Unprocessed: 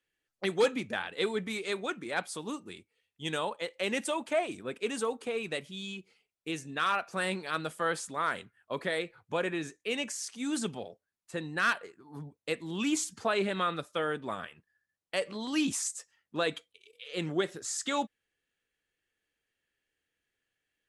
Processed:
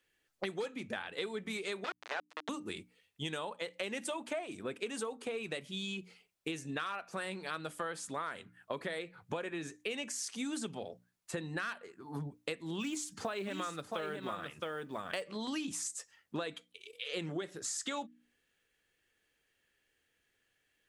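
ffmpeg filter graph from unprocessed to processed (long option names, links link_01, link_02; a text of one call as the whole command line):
ffmpeg -i in.wav -filter_complex "[0:a]asettb=1/sr,asplit=3[link_01][link_02][link_03];[link_01]atrim=end=1.844[link_04];[link_02]atrim=start=1.84:end=2.49,asetpts=PTS-STARTPTS,afade=type=in:duration=0.004:curve=qsin,afade=type=out:start_time=0.646:duration=0.004:curve=qsin,aeval=exprs='val(0)*gte(abs(val(0)),0.0299)':channel_layout=same,asplit=2[link_05][link_06];[link_06]highpass=frequency=720:poles=1,volume=14dB,asoftclip=type=tanh:threshold=-16dB[link_07];[link_05][link_07]amix=inputs=2:normalize=0,lowpass=frequency=1200:poles=1,volume=-6dB,highpass=350,lowpass=5900[link_08];[link_03]atrim=start=2.486[link_09];[link_04][link_08]acrossfade=duration=0.004:curve1=hsin:curve2=qsin[link_10];[link_10][link_09]acrossfade=duration=0.004:curve1=qsin:curve2=hsin,asettb=1/sr,asplit=3[link_11][link_12][link_13];[link_11]atrim=end=12.804[link_14];[link_12]atrim=start=12.8:end=15.22,asetpts=PTS-STARTPTS,afade=type=in:duration=0.004:curve=qsin,afade=type=out:start_time=2.416:duration=0.004:curve=qsin,acrusher=bits=8:mode=log:mix=0:aa=0.000001,aecho=1:1:668:0.398,atrim=end_sample=106722[link_15];[link_13]atrim=start=15.216[link_16];[link_14][link_15]acrossfade=duration=0.004:curve1=hsin:curve2=qsin[link_17];[link_17][link_16]acrossfade=duration=0.004:curve1=qsin:curve2=hsin,bandreject=frequency=60:width_type=h:width=6,bandreject=frequency=120:width_type=h:width=6,bandreject=frequency=180:width_type=h:width=6,bandreject=frequency=240:width_type=h:width=6,bandreject=frequency=300:width_type=h:width=6,acompressor=threshold=-42dB:ratio=10,volume=6.5dB" out.wav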